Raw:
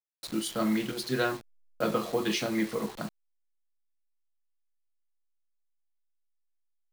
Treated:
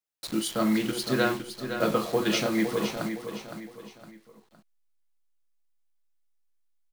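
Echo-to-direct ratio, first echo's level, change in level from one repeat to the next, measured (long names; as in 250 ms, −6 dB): −8.0 dB, −8.5 dB, −8.5 dB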